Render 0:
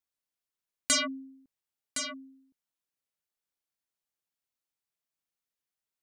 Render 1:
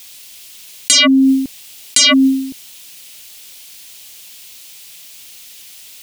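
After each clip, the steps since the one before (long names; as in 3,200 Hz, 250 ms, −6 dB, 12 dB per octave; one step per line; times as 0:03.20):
high shelf with overshoot 2,000 Hz +10.5 dB, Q 1.5
envelope flattener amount 100%
level +2 dB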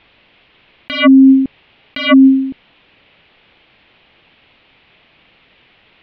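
Gaussian smoothing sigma 3.9 samples
level +5 dB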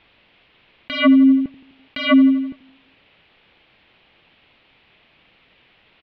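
repeating echo 84 ms, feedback 58%, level −17 dB
level −5 dB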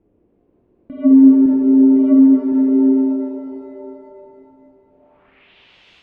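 low-pass filter sweep 360 Hz → 3,600 Hz, 0:04.85–0:05.53
reverb with rising layers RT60 3.1 s, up +7 semitones, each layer −8 dB, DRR 0.5 dB
level −1 dB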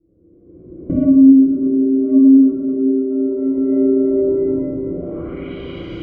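camcorder AGC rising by 30 dB per second
moving average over 50 samples
convolution reverb RT60 0.90 s, pre-delay 3 ms, DRR −7.5 dB
level −7 dB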